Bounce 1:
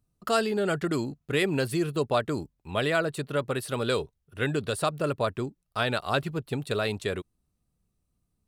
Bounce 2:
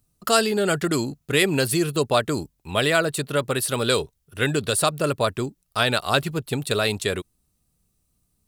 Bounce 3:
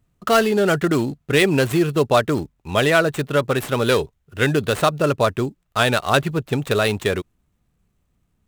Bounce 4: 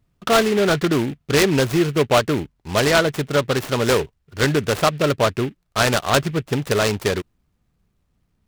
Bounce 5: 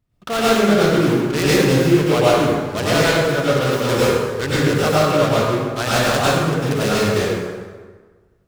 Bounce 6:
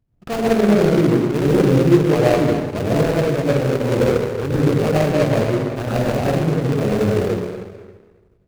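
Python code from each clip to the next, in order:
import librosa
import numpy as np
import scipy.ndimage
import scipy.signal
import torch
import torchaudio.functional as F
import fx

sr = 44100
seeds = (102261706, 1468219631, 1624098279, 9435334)

y1 = fx.high_shelf(x, sr, hz=4000.0, db=11.0)
y1 = y1 * 10.0 ** (4.5 / 20.0)
y2 = scipy.ndimage.median_filter(y1, 9, mode='constant')
y2 = y2 * 10.0 ** (4.5 / 20.0)
y3 = fx.noise_mod_delay(y2, sr, seeds[0], noise_hz=2100.0, depth_ms=0.067)
y4 = fx.rev_plate(y3, sr, seeds[1], rt60_s=1.5, hf_ratio=0.65, predelay_ms=85, drr_db=-8.5)
y4 = y4 * 10.0 ** (-7.0 / 20.0)
y5 = scipy.ndimage.median_filter(y4, 41, mode='constant')
y5 = y5 * 10.0 ** (2.0 / 20.0)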